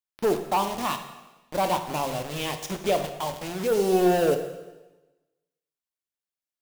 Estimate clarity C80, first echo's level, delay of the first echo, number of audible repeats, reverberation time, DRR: 11.0 dB, no echo, no echo, no echo, 1.1 s, 6.5 dB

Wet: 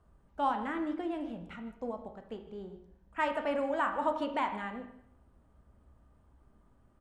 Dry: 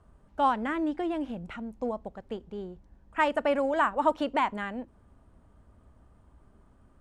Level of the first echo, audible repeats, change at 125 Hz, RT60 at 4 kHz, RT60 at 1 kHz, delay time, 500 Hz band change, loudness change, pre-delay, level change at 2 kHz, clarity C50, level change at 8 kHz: -17.0 dB, 1, -5.5 dB, 0.60 s, 0.70 s, 157 ms, -5.5 dB, -5.0 dB, 7 ms, -5.0 dB, 8.5 dB, no reading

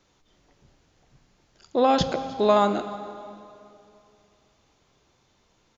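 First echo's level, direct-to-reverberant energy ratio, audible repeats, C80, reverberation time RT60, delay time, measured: -20.5 dB, 10.0 dB, 2, 11.5 dB, 2.7 s, 310 ms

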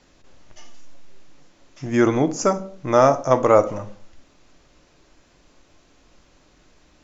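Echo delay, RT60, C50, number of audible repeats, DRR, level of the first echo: no echo, 0.55 s, 16.5 dB, no echo, 9.5 dB, no echo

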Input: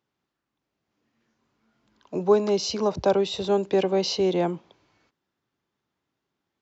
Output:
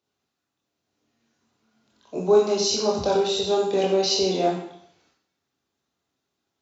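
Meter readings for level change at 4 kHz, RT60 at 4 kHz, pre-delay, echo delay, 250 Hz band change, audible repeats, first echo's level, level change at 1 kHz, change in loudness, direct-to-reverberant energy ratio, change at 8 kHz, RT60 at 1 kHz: +5.5 dB, 0.70 s, 17 ms, no echo, -1.0 dB, no echo, no echo, +2.5 dB, +2.0 dB, -3.0 dB, no reading, 0.70 s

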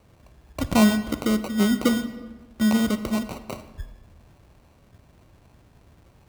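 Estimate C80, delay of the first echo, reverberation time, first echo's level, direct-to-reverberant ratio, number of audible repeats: 14.0 dB, no echo, 1.4 s, no echo, 11.5 dB, no echo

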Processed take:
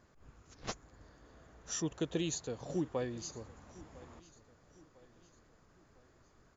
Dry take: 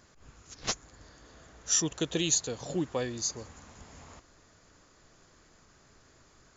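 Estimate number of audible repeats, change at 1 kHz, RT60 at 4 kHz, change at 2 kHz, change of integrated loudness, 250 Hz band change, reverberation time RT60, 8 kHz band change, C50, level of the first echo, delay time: 3, -5.0 dB, no reverb, -8.5 dB, -8.5 dB, -3.5 dB, no reverb, no reading, no reverb, -21.0 dB, 1003 ms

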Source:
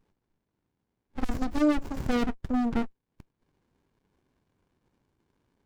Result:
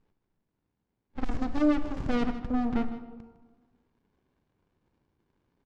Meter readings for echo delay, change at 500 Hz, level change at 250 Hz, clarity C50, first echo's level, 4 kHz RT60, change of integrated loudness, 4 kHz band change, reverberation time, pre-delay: 157 ms, -1.0 dB, -0.5 dB, 10.0 dB, -15.0 dB, 0.85 s, -0.5 dB, -3.5 dB, 1.4 s, 32 ms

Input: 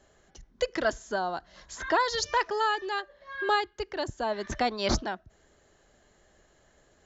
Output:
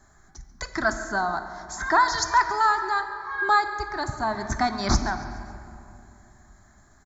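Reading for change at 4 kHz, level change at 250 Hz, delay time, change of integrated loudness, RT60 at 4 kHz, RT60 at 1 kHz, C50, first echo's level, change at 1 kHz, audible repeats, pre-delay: +0.5 dB, +4.5 dB, 139 ms, +5.0 dB, 1.5 s, 2.6 s, 8.5 dB, -18.0 dB, +7.0 dB, 3, 3 ms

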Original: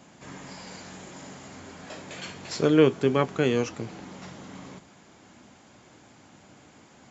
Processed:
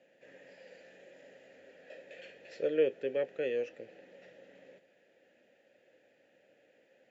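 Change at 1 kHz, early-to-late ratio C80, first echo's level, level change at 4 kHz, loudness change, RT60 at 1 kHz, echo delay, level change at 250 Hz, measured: -22.5 dB, no reverb, no echo, -16.5 dB, -9.0 dB, no reverb, no echo, -18.5 dB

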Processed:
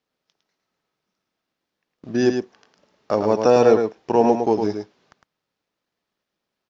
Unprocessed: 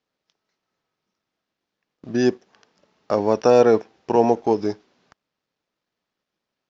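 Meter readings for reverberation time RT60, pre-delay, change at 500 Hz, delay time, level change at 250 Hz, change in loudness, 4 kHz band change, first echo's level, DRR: no reverb, no reverb, +0.5 dB, 107 ms, +1.0 dB, +0.5 dB, +1.0 dB, -6.0 dB, no reverb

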